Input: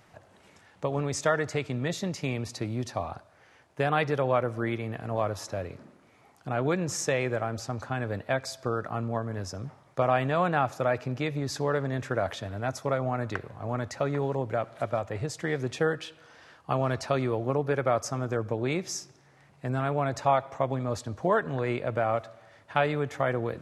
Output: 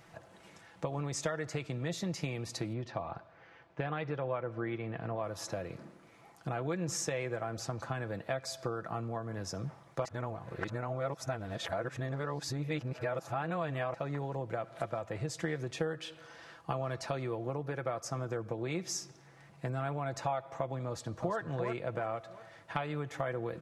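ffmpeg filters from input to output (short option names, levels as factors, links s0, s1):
-filter_complex "[0:a]asettb=1/sr,asplit=3[s0][s1][s2];[s0]atrim=end=2.734[s3];[s1]atrim=start=2.73:end=5.24,asetpts=PTS-STARTPTS,afade=t=in:d=0.004:c=qsin,afade=t=out:st=2.506:d=0.004:c=qsin,lowpass=3200[s4];[s2]atrim=start=5.236[s5];[s3][s4]acrossfade=d=0.004:c1=hsin:c2=qsin[s6];[s6][s5]acrossfade=d=0.004:c1=qsin:c2=hsin,asplit=2[s7][s8];[s8]afade=t=in:st=20.87:d=0.01,afade=t=out:st=21.37:d=0.01,aecho=0:1:350|700|1050:0.446684|0.111671|0.0279177[s9];[s7][s9]amix=inputs=2:normalize=0,asplit=3[s10][s11][s12];[s10]atrim=end=10.052[s13];[s11]atrim=start=10.048:end=13.942,asetpts=PTS-STARTPTS,areverse[s14];[s12]atrim=start=13.938[s15];[s13][s14]acrossfade=d=0.004:c1=hsin:c2=hsin[s16];[s16][s15]acrossfade=d=0.004:c1=hsin:c2=hsin,acompressor=threshold=0.02:ratio=4,aecho=1:1:6:0.42"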